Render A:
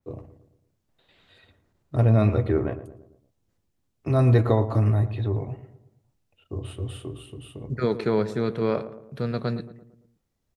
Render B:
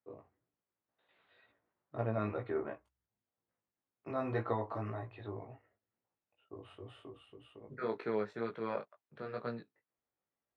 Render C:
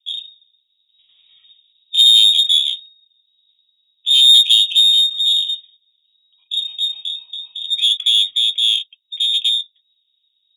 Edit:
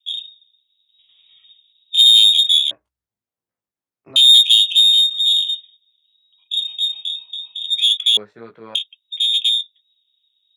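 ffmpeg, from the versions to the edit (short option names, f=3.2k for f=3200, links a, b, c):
-filter_complex "[1:a]asplit=2[a][b];[2:a]asplit=3[c][d][e];[c]atrim=end=2.712[f];[a]atrim=start=2.708:end=4.162[g];[d]atrim=start=4.158:end=8.172[h];[b]atrim=start=8.168:end=8.752[i];[e]atrim=start=8.748[j];[f][g]acrossfade=d=0.004:c1=hsin:c2=hsin[k];[k][h]acrossfade=d=0.004:c1=hsin:c2=hsin[l];[l][i]acrossfade=d=0.004:c1=hsin:c2=hsin[m];[m][j]acrossfade=d=0.004:c1=hsin:c2=hsin"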